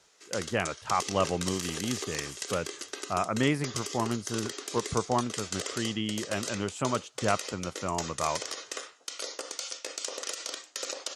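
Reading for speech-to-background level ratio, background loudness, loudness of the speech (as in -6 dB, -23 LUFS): 4.0 dB, -36.5 LUFS, -32.5 LUFS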